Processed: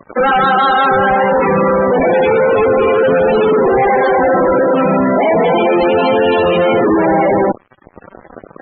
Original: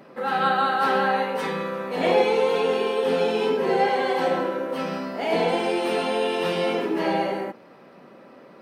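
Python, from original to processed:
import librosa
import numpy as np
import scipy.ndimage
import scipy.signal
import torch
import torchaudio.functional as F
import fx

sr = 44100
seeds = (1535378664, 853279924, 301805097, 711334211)

y = fx.fuzz(x, sr, gain_db=41.0, gate_db=-42.0)
y = fx.spec_topn(y, sr, count=32)
y = y * librosa.db_to_amplitude(4.0)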